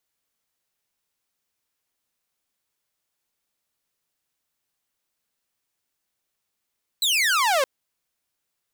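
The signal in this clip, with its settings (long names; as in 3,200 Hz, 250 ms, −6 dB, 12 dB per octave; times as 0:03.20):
single falling chirp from 4,100 Hz, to 510 Hz, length 0.62 s saw, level −15.5 dB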